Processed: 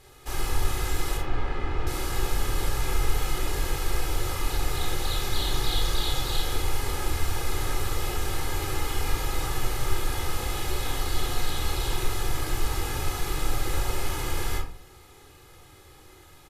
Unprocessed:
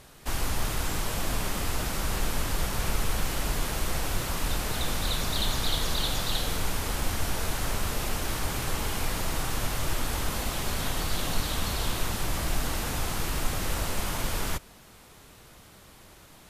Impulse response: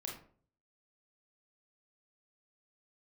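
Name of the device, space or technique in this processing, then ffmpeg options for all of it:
microphone above a desk: -filter_complex "[0:a]asettb=1/sr,asplit=3[a][b][c];[a]atrim=end=1.174[d];[b]atrim=start=1.17:end=1.87,asetpts=PTS-STARTPTS,afade=t=in:d=0.004:c=qsin,afade=t=out:st=0.696:d=0.004:c=qsin,lowpass=2.3k[e];[c]atrim=start=1.866[f];[d][e]acrossfade=d=0.004:c1=hsin:c2=qsin[g];[g][f]acrossfade=d=0.004:c1=qsin:c2=hsin,aecho=1:1:2.4:0.69[h];[1:a]atrim=start_sample=2205[i];[h][i]afir=irnorm=-1:irlink=0"

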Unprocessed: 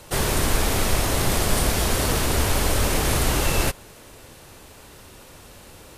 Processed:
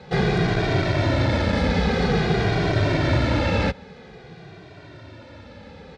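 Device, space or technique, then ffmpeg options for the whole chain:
barber-pole flanger into a guitar amplifier: -filter_complex "[0:a]asplit=2[a][b];[b]adelay=2,afreqshift=-0.5[c];[a][c]amix=inputs=2:normalize=1,asoftclip=type=tanh:threshold=-16dB,highpass=75,equalizer=f=110:t=q:w=4:g=4,equalizer=f=170:t=q:w=4:g=7,equalizer=f=1.1k:t=q:w=4:g=-9,equalizer=f=2.9k:t=q:w=4:g=-9,lowpass=f=3.8k:w=0.5412,lowpass=f=3.8k:w=1.3066,volume=7.5dB"

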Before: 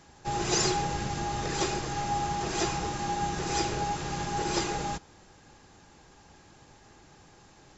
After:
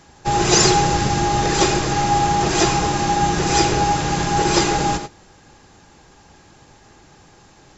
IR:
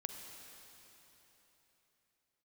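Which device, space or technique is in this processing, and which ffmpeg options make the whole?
keyed gated reverb: -filter_complex "[0:a]asplit=3[a][b][c];[1:a]atrim=start_sample=2205[d];[b][d]afir=irnorm=-1:irlink=0[e];[c]apad=whole_len=342828[f];[e][f]sidechaingate=range=-33dB:threshold=-44dB:ratio=16:detection=peak,volume=2dB[g];[a][g]amix=inputs=2:normalize=0,volume=6.5dB"

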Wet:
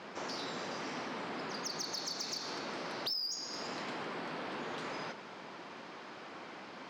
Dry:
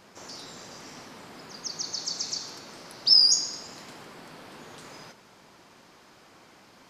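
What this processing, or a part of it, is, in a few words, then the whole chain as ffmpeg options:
AM radio: -af "highpass=190,lowpass=3.5k,acompressor=threshold=-42dB:ratio=6,asoftclip=type=tanh:threshold=-37dB,volume=7.5dB"

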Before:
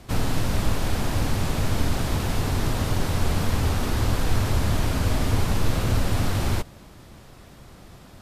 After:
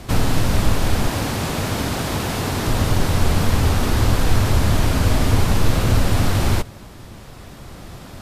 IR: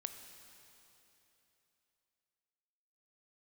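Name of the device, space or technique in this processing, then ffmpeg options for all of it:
ducked reverb: -filter_complex "[0:a]asplit=3[a][b][c];[1:a]atrim=start_sample=2205[d];[b][d]afir=irnorm=-1:irlink=0[e];[c]apad=whole_len=362291[f];[e][f]sidechaincompress=threshold=-34dB:ratio=8:attack=16:release=1280,volume=0dB[g];[a][g]amix=inputs=2:normalize=0,asettb=1/sr,asplit=3[h][i][j];[h]atrim=end=1.084[k];[i]atrim=start=1.08:end=2.68,asetpts=PTS-STARTPTS,afade=t=in:d=0.004:c=qsin,afade=t=out:st=1.596:d=0.004:c=qsin,highpass=f=160:p=1[l];[j]atrim=start=2.676[m];[k][l]acrossfade=d=0.004:c1=hsin:c2=qsin[n];[n][m]acrossfade=d=0.004:c1=qsin:c2=hsin,volume=5dB"

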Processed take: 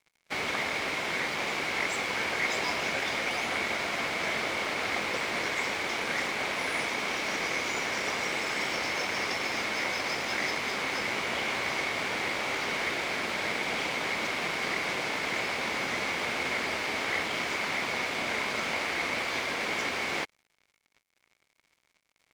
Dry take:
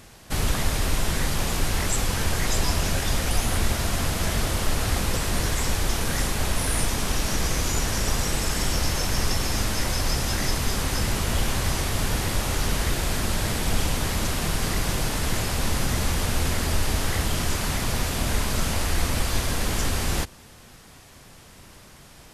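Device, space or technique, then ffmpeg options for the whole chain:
pocket radio on a weak battery: -af "highpass=360,lowpass=4k,aeval=exprs='sgn(val(0))*max(abs(val(0))-0.00473,0)':c=same,equalizer=f=2.2k:t=o:w=0.21:g=12"

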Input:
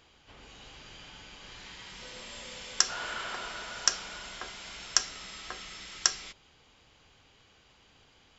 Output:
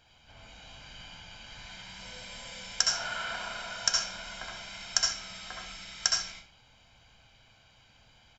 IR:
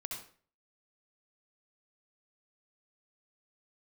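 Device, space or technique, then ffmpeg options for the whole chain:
microphone above a desk: -filter_complex "[0:a]aecho=1:1:1.3:0.61[a];[1:a]atrim=start_sample=2205[b];[a][b]afir=irnorm=-1:irlink=0"

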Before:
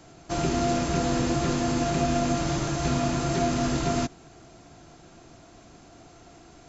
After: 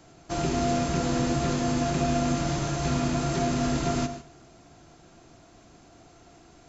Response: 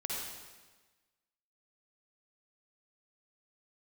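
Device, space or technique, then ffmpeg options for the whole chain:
keyed gated reverb: -filter_complex "[0:a]asplit=3[a][b][c];[1:a]atrim=start_sample=2205[d];[b][d]afir=irnorm=-1:irlink=0[e];[c]apad=whole_len=294753[f];[e][f]sidechaingate=range=-10dB:threshold=-43dB:ratio=16:detection=peak,volume=-9.5dB[g];[a][g]amix=inputs=2:normalize=0,volume=-3.5dB"

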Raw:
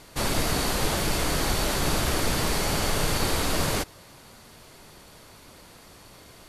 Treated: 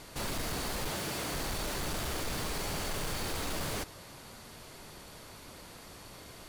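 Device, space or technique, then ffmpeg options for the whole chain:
saturation between pre-emphasis and de-emphasis: -filter_complex "[0:a]asettb=1/sr,asplit=3[a][b][c];[a]atrim=end=0.914[d];[b]atrim=start=0.91:end=1.34,asetpts=PTS-STARTPTS,afade=t=in:d=0.004:c=qsin,afade=t=out:st=0.426:d=0.004:c=qsin,highpass=100[e];[c]atrim=start=1.336[f];[d][e]acrossfade=d=0.004:c1=hsin:c2=qsin[g];[g][f]acrossfade=d=0.004:c1=qsin:c2=hsin,highshelf=f=3.3k:g=10,asoftclip=type=tanh:threshold=-30dB,highshelf=f=3.3k:g=-10"

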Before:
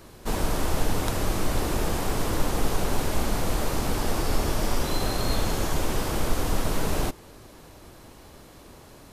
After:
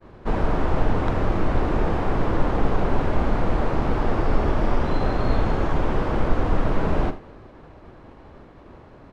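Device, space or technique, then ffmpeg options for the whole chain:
hearing-loss simulation: -af "lowpass=1.8k,aecho=1:1:45|79:0.211|0.168,agate=range=-33dB:threshold=-45dB:ratio=3:detection=peak,volume=4.5dB"

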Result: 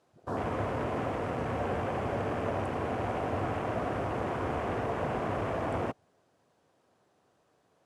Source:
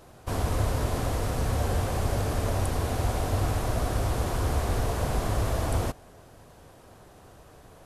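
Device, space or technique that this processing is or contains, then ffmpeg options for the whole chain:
over-cleaned archive recording: -af "highpass=170,lowpass=7.9k,afwtdn=0.00891"

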